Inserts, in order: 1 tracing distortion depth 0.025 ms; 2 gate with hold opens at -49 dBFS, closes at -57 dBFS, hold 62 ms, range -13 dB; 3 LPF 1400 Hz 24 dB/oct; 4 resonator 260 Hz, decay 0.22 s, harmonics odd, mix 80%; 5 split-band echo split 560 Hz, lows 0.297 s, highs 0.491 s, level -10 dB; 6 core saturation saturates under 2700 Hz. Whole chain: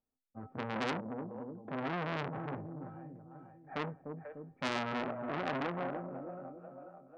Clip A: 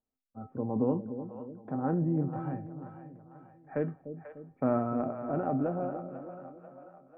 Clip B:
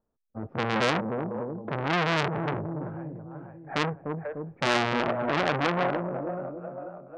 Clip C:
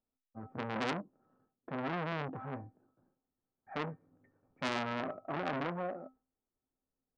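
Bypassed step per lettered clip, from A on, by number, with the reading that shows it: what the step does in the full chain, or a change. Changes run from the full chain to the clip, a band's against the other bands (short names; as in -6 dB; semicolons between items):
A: 6, crest factor change -6.0 dB; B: 4, 250 Hz band -2.5 dB; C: 5, momentary loudness spread change +4 LU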